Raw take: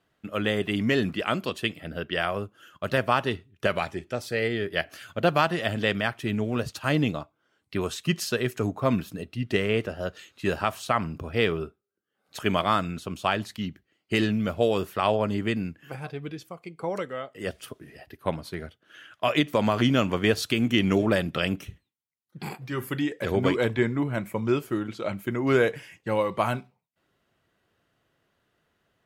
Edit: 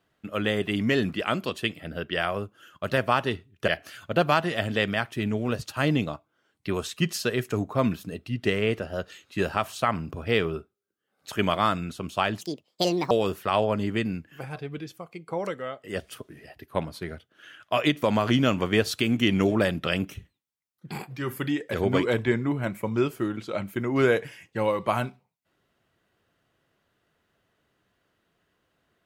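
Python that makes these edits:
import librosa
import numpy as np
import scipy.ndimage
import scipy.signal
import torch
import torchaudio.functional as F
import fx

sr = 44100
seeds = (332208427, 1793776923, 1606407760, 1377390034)

y = fx.edit(x, sr, fx.cut(start_s=3.68, length_s=1.07),
    fx.speed_span(start_s=13.48, length_s=1.14, speed=1.63), tone=tone)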